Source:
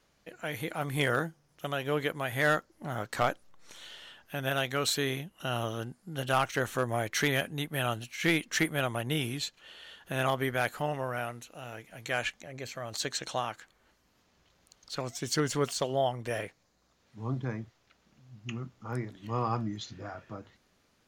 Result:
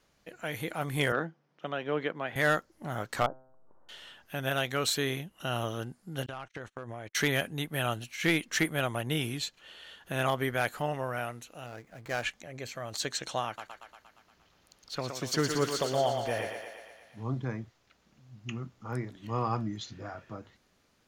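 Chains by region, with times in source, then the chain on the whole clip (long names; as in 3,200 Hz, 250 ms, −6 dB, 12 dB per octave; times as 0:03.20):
0:01.12–0:02.36: high-pass filter 160 Hz 24 dB per octave + high-frequency loss of the air 230 metres
0:03.26–0:03.89: Butterworth low-pass 1,100 Hz + tuned comb filter 130 Hz, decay 0.8 s
0:06.26–0:07.15: noise gate −38 dBFS, range −36 dB + downward compressor 10 to 1, threshold −36 dBFS + high-frequency loss of the air 74 metres
0:11.66–0:12.23: running median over 15 samples + notch filter 930 Hz, Q 23
0:13.46–0:17.23: parametric band 8,100 Hz −5.5 dB 0.48 octaves + feedback echo with a high-pass in the loop 117 ms, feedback 67%, high-pass 300 Hz, level −5 dB
whole clip: no processing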